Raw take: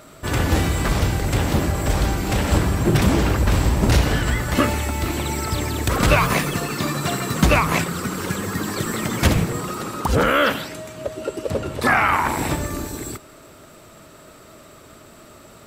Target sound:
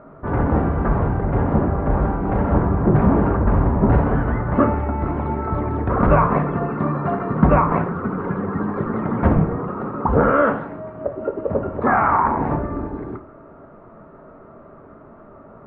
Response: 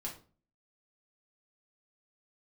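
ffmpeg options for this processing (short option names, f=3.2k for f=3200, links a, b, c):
-filter_complex "[0:a]lowpass=f=1.3k:w=0.5412,lowpass=f=1.3k:w=1.3066,asplit=2[a][b];[1:a]atrim=start_sample=2205,lowshelf=f=330:g=-6[c];[b][c]afir=irnorm=-1:irlink=0,volume=0.5dB[d];[a][d]amix=inputs=2:normalize=0,volume=-1dB"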